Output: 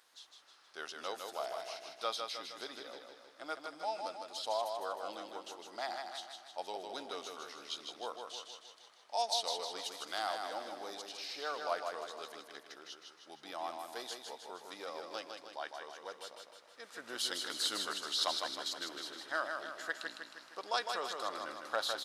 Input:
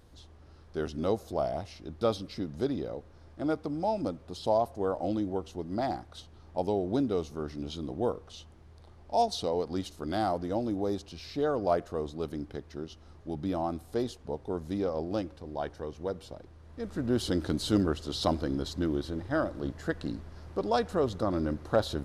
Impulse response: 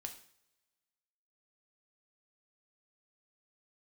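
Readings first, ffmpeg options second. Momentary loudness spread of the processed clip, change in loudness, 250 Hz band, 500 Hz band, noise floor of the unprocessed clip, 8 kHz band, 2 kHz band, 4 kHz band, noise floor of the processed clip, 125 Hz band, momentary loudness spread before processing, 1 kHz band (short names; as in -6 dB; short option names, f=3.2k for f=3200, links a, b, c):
16 LU, -7.5 dB, -22.5 dB, -12.0 dB, -54 dBFS, +3.5 dB, +2.0 dB, +3.5 dB, -61 dBFS, under -30 dB, 11 LU, -4.5 dB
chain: -filter_complex "[0:a]highpass=1.3k,asplit=2[a][b];[b]aecho=0:1:156|312|468|624|780|936|1092:0.562|0.304|0.164|0.0885|0.0478|0.0258|0.0139[c];[a][c]amix=inputs=2:normalize=0,volume=2dB"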